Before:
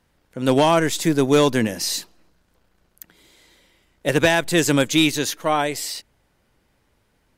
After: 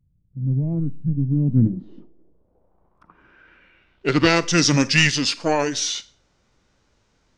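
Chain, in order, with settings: low-pass sweep 170 Hz -> 7800 Hz, 1.24–4.48; formant shift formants -5 st; Schroeder reverb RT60 0.39 s, combs from 32 ms, DRR 17 dB

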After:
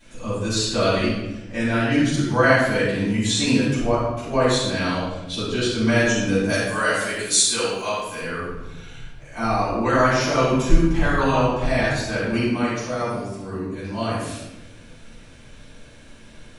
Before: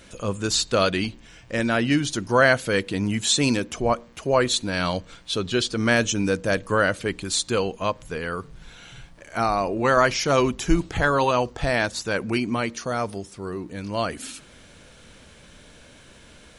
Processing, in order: 6.49–8.21 RIAA curve recording; shoebox room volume 440 m³, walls mixed, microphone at 8.4 m; gain -15 dB

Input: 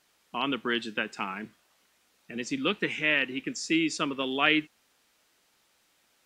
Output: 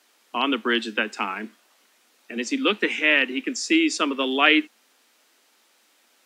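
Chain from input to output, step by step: steep high-pass 210 Hz 72 dB/oct; gain +6.5 dB

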